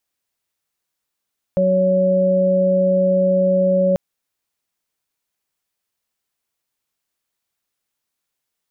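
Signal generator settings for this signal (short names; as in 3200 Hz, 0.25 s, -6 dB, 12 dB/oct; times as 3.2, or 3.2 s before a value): steady additive tone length 2.39 s, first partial 186 Hz, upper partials -14/4.5 dB, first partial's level -18.5 dB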